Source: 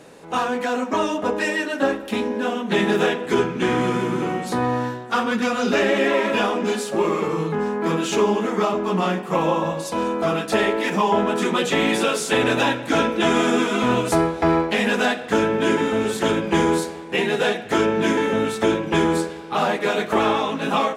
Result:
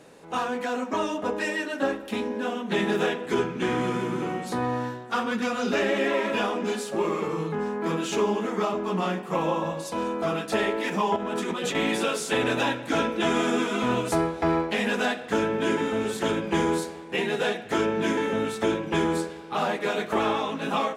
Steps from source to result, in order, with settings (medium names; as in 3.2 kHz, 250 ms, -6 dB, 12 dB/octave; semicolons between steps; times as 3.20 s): 11.16–11.75 s: compressor with a negative ratio -24 dBFS, ratio -1; trim -5.5 dB